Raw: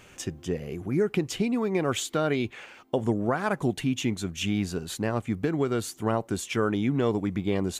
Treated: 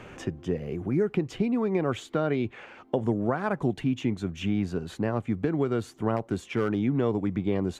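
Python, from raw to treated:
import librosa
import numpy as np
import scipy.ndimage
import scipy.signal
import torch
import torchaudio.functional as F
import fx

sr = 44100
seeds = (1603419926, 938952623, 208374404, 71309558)

y = fx.lowpass(x, sr, hz=1500.0, slope=6)
y = fx.clip_hard(y, sr, threshold_db=-20.0, at=(6.16, 6.8))
y = fx.band_squash(y, sr, depth_pct=40)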